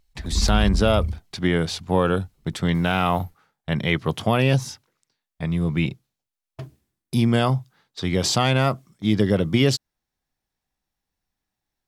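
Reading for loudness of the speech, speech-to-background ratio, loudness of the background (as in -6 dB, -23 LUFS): -22.5 LUFS, 4.0 dB, -26.5 LUFS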